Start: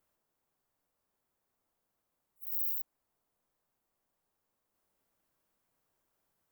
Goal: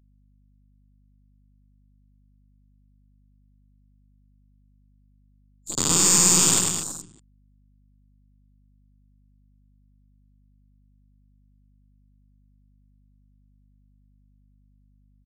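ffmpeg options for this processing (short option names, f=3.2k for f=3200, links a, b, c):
-filter_complex "[0:a]afftfilt=real='re*gte(hypot(re,im),0.00501)':imag='im*gte(hypot(re,im),0.00501)':win_size=1024:overlap=0.75,aeval=exprs='0.15*(cos(1*acos(clip(val(0)/0.15,-1,1)))-cos(1*PI/2))+0.00422*(cos(4*acos(clip(val(0)/0.15,-1,1)))-cos(4*PI/2))+0.00422*(cos(5*acos(clip(val(0)/0.15,-1,1)))-cos(5*PI/2))+0.0299*(cos(8*acos(clip(val(0)/0.15,-1,1)))-cos(8*PI/2))':c=same,asplit=2[a][b];[b]aeval=exprs='val(0)*gte(abs(val(0)),0.00944)':c=same,volume=-6.5dB[c];[a][c]amix=inputs=2:normalize=0,bandreject=f=50:t=h:w=6,bandreject=f=100:t=h:w=6,bandreject=f=150:t=h:w=6,bandreject=f=200:t=h:w=6,bandreject=f=250:t=h:w=6,adynamicequalizer=threshold=0.00126:dfrequency=110:dqfactor=1.6:tfrequency=110:tqfactor=1.6:attack=5:release=100:ratio=0.375:range=2:mode=cutabove:tftype=bell,acrossover=split=200|4200[d][e][f];[d]acompressor=threshold=-51dB:ratio=4[g];[e]acompressor=threshold=-34dB:ratio=4[h];[g][h][f]amix=inputs=3:normalize=0,asetrate=18846,aresample=44100,asplit=2[i][j];[j]aecho=0:1:100|210|331|464.1|610.5:0.631|0.398|0.251|0.158|0.1[k];[i][k]amix=inputs=2:normalize=0,afwtdn=0.00447,aeval=exprs='val(0)+0.000447*(sin(2*PI*50*n/s)+sin(2*PI*2*50*n/s)/2+sin(2*PI*3*50*n/s)/3+sin(2*PI*4*50*n/s)/4+sin(2*PI*5*50*n/s)/5)':c=same,volume=8.5dB"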